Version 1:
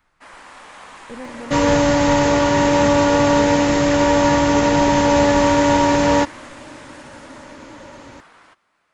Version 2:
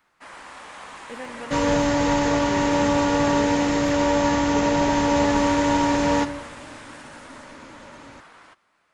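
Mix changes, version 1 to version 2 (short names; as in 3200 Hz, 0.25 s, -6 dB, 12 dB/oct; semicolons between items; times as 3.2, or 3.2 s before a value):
speech: add tilt +4 dB/oct; second sound -8.0 dB; reverb: on, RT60 1.2 s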